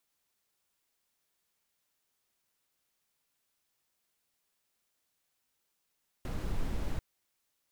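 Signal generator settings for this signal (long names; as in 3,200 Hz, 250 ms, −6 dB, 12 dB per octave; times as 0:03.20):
noise brown, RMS −32 dBFS 0.74 s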